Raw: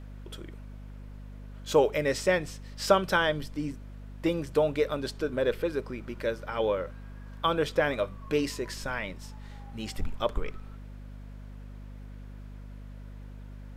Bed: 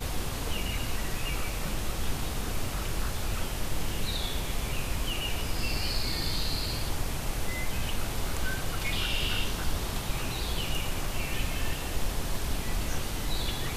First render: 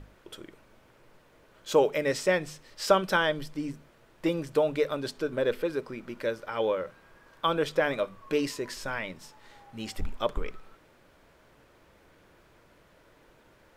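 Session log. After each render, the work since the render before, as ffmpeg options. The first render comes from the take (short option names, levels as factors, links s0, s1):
-af "bandreject=f=50:t=h:w=6,bandreject=f=100:t=h:w=6,bandreject=f=150:t=h:w=6,bandreject=f=200:t=h:w=6,bandreject=f=250:t=h:w=6"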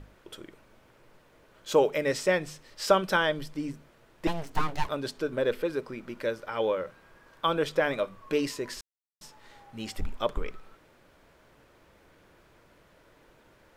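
-filter_complex "[0:a]asettb=1/sr,asplit=3[s0][s1][s2];[s0]atrim=end=4.274[s3];[s1]atrim=start=4.27:end=4.89,asetpts=PTS-STARTPTS,afade=t=in:d=0.004:c=qsin,afade=t=out:st=0.616:d=0.004:c=qsin,aeval=exprs='abs(val(0))':c=same[s4];[s2]atrim=start=4.886[s5];[s3][s4]acrossfade=d=0.004:c1=hsin:c2=qsin[s6];[s6][s5]acrossfade=d=0.004:c1=qsin:c2=hsin,asplit=3[s7][s8][s9];[s7]atrim=end=8.81,asetpts=PTS-STARTPTS,afade=t=out:st=8.806:d=0.004:c=hsin[s10];[s8]atrim=start=8.81:end=9.21,asetpts=PTS-STARTPTS,volume=0[s11];[s9]atrim=start=9.21,asetpts=PTS-STARTPTS,afade=t=in:d=0.004:c=hsin[s12];[s10][s11][s12]concat=n=3:v=0:a=1"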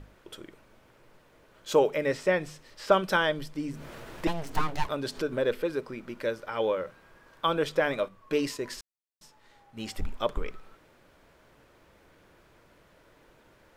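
-filter_complex "[0:a]asettb=1/sr,asplit=3[s0][s1][s2];[s0]atrim=end=1.764[s3];[s1]atrim=start=1.76:end=2.92,asetpts=PTS-STARTPTS,afade=t=in:d=0.004:c=qsin,afade=t=out:st=1.156:d=0.004:c=qsin,acrossover=split=2900[s4][s5];[s5]acompressor=threshold=0.00562:ratio=4:attack=1:release=60[s6];[s4][s6]amix=inputs=2:normalize=0[s7];[s2]atrim=start=2.916[s8];[s3][s7]acrossfade=d=0.004:c1=hsin:c2=qsin[s9];[s9][s8]acrossfade=d=0.004:c1=qsin:c2=hsin,asplit=3[s10][s11][s12];[s10]afade=t=out:st=3.7:d=0.02[s13];[s11]acompressor=mode=upward:threshold=0.0398:ratio=2.5:attack=3.2:release=140:knee=2.83:detection=peak,afade=t=in:st=3.7:d=0.02,afade=t=out:st=5.53:d=0.02[s14];[s12]afade=t=in:st=5.53:d=0.02[s15];[s13][s14][s15]amix=inputs=3:normalize=0,asettb=1/sr,asplit=3[s16][s17][s18];[s16]atrim=end=8.084[s19];[s17]atrim=start=8.08:end=9.79,asetpts=PTS-STARTPTS,afade=t=in:d=0.004:c=qsin,afade=t=out:st=1.706:d=0.004:c=qsin,agate=range=0.501:threshold=0.00708:ratio=16:release=100:detection=peak[s20];[s18]atrim=start=9.786[s21];[s19][s20]acrossfade=d=0.004:c1=hsin:c2=qsin[s22];[s22][s21]acrossfade=d=0.004:c1=qsin:c2=hsin"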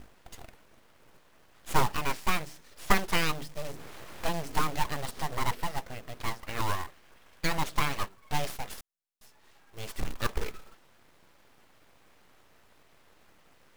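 -af "aeval=exprs='abs(val(0))':c=same,acrusher=bits=3:mode=log:mix=0:aa=0.000001"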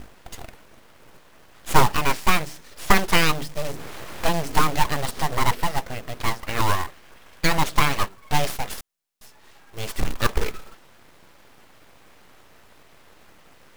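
-af "volume=2.82,alimiter=limit=0.891:level=0:latency=1"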